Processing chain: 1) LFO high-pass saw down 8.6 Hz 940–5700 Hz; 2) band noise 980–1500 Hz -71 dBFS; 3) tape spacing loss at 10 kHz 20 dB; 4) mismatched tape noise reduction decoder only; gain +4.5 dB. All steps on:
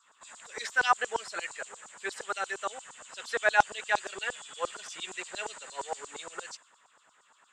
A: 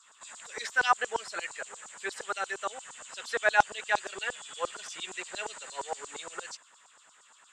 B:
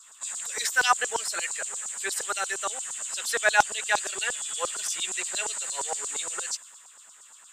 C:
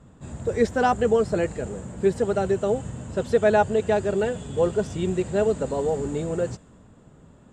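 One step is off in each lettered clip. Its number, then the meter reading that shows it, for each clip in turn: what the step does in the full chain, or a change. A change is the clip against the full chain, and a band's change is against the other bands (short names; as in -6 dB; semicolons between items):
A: 4, momentary loudness spread change -1 LU; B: 3, 8 kHz band +13.5 dB; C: 1, 125 Hz band +28.5 dB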